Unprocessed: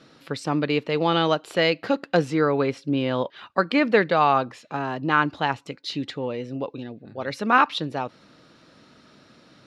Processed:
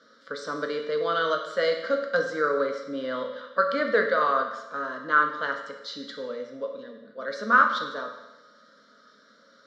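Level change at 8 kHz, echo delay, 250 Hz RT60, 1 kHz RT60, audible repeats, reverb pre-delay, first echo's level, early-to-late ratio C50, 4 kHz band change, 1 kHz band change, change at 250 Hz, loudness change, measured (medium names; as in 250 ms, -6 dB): no reading, no echo, 1.0 s, 1.0 s, no echo, 9 ms, no echo, 6.5 dB, -6.5 dB, -2.5 dB, -11.5 dB, -2.5 dB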